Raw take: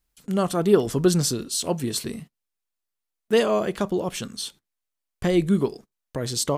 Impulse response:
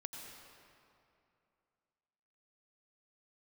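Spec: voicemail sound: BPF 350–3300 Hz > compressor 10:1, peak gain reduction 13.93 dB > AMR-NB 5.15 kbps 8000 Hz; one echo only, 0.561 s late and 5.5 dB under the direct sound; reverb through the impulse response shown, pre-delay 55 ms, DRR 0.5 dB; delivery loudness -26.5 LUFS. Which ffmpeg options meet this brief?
-filter_complex "[0:a]aecho=1:1:561:0.531,asplit=2[a][b];[1:a]atrim=start_sample=2205,adelay=55[c];[b][c]afir=irnorm=-1:irlink=0,volume=2dB[d];[a][d]amix=inputs=2:normalize=0,highpass=350,lowpass=3.3k,acompressor=threshold=-25dB:ratio=10,volume=6dB" -ar 8000 -c:a libopencore_amrnb -b:a 5150

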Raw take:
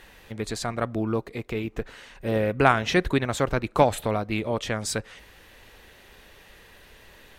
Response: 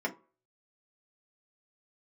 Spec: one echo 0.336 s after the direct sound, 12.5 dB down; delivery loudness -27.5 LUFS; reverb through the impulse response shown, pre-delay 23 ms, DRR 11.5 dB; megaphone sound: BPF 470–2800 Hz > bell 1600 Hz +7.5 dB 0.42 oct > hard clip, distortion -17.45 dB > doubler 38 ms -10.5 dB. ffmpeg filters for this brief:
-filter_complex "[0:a]aecho=1:1:336:0.237,asplit=2[a][b];[1:a]atrim=start_sample=2205,adelay=23[c];[b][c]afir=irnorm=-1:irlink=0,volume=-18dB[d];[a][d]amix=inputs=2:normalize=0,highpass=470,lowpass=2.8k,equalizer=f=1.6k:t=o:w=0.42:g=7.5,asoftclip=type=hard:threshold=-8dB,asplit=2[e][f];[f]adelay=38,volume=-10.5dB[g];[e][g]amix=inputs=2:normalize=0,volume=-1dB"

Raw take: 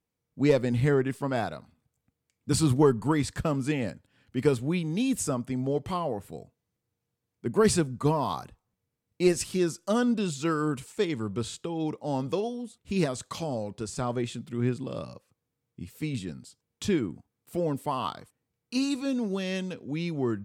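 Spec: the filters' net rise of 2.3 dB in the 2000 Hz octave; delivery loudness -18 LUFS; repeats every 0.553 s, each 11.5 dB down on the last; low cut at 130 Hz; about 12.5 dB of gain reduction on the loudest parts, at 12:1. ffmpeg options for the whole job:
-af "highpass=130,equalizer=f=2k:t=o:g=3,acompressor=threshold=-29dB:ratio=12,aecho=1:1:553|1106|1659:0.266|0.0718|0.0194,volume=17.5dB"

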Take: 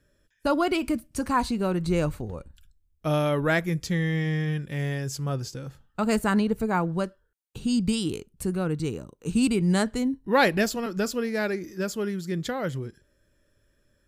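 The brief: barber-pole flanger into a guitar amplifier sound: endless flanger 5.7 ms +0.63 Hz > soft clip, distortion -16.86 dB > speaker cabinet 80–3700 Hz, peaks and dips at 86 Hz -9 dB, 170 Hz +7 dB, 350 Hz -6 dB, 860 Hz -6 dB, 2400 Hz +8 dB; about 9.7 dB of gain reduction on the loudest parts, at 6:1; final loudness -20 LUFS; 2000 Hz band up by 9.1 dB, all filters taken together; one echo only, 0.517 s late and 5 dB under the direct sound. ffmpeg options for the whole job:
-filter_complex "[0:a]equalizer=f=2k:t=o:g=8.5,acompressor=threshold=-23dB:ratio=6,aecho=1:1:517:0.562,asplit=2[a][b];[b]adelay=5.7,afreqshift=0.63[c];[a][c]amix=inputs=2:normalize=1,asoftclip=threshold=-24dB,highpass=80,equalizer=f=86:t=q:w=4:g=-9,equalizer=f=170:t=q:w=4:g=7,equalizer=f=350:t=q:w=4:g=-6,equalizer=f=860:t=q:w=4:g=-6,equalizer=f=2.4k:t=q:w=4:g=8,lowpass=f=3.7k:w=0.5412,lowpass=f=3.7k:w=1.3066,volume=11.5dB"

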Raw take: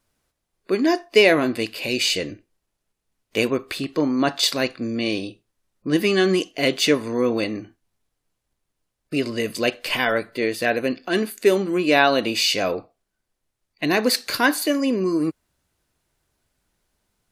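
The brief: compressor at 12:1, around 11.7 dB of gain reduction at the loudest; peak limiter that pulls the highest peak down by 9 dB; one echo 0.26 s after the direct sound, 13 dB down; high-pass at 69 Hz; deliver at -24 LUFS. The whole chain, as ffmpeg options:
-af "highpass=69,acompressor=threshold=-21dB:ratio=12,alimiter=limit=-18dB:level=0:latency=1,aecho=1:1:260:0.224,volume=4.5dB"

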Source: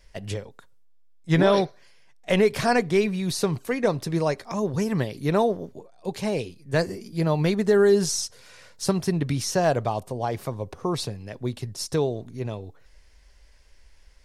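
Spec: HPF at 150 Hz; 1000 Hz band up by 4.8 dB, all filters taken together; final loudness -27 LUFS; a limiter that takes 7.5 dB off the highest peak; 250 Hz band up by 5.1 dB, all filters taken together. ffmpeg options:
-af "highpass=150,equalizer=f=250:t=o:g=8.5,equalizer=f=1k:t=o:g=6,volume=-3.5dB,alimiter=limit=-13.5dB:level=0:latency=1"

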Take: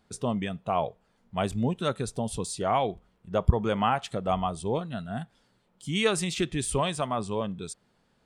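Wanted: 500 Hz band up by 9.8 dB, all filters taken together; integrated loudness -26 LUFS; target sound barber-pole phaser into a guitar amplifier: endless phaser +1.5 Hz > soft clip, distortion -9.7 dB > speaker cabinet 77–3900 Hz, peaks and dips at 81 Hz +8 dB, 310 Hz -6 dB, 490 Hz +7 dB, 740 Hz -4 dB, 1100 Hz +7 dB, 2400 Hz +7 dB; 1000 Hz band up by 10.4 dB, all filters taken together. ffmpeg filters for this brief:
-filter_complex "[0:a]equalizer=f=500:t=o:g=6,equalizer=f=1k:t=o:g=8.5,asplit=2[a][b];[b]afreqshift=1.5[c];[a][c]amix=inputs=2:normalize=1,asoftclip=threshold=-20.5dB,highpass=77,equalizer=f=81:t=q:w=4:g=8,equalizer=f=310:t=q:w=4:g=-6,equalizer=f=490:t=q:w=4:g=7,equalizer=f=740:t=q:w=4:g=-4,equalizer=f=1.1k:t=q:w=4:g=7,equalizer=f=2.4k:t=q:w=4:g=7,lowpass=f=3.9k:w=0.5412,lowpass=f=3.9k:w=1.3066,volume=1.5dB"

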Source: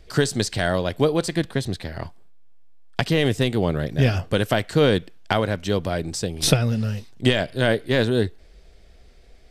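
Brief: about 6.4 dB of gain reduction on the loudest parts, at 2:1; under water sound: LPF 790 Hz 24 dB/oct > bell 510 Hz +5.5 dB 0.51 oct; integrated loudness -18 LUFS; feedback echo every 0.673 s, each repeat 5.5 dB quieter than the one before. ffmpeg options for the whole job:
-af "acompressor=threshold=-24dB:ratio=2,lowpass=f=790:w=0.5412,lowpass=f=790:w=1.3066,equalizer=f=510:t=o:w=0.51:g=5.5,aecho=1:1:673|1346|2019|2692|3365|4038|4711:0.531|0.281|0.149|0.079|0.0419|0.0222|0.0118,volume=8dB"

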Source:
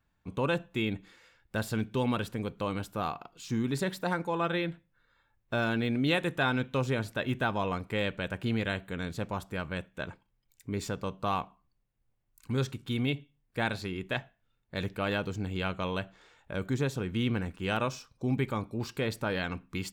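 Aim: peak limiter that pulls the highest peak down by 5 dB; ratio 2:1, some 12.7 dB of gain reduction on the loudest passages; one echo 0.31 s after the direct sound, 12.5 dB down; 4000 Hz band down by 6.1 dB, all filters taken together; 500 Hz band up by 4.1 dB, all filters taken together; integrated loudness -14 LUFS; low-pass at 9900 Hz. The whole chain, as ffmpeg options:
-af "lowpass=9.9k,equalizer=f=500:t=o:g=5,equalizer=f=4k:t=o:g=-8,acompressor=threshold=-47dB:ratio=2,alimiter=level_in=8dB:limit=-24dB:level=0:latency=1,volume=-8dB,aecho=1:1:310:0.237,volume=29.5dB"

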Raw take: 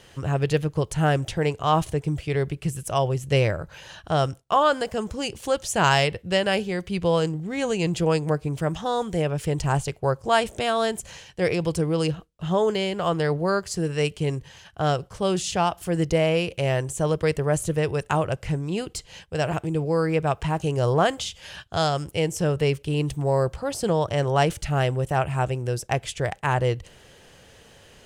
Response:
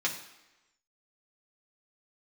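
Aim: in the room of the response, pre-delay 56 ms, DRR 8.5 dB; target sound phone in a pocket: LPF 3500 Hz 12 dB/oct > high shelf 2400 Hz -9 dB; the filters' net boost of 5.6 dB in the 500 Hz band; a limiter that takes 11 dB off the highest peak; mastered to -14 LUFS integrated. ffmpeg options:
-filter_complex "[0:a]equalizer=f=500:t=o:g=7,alimiter=limit=-15dB:level=0:latency=1,asplit=2[a][b];[1:a]atrim=start_sample=2205,adelay=56[c];[b][c]afir=irnorm=-1:irlink=0,volume=-16dB[d];[a][d]amix=inputs=2:normalize=0,lowpass=3.5k,highshelf=f=2.4k:g=-9,volume=11.5dB"

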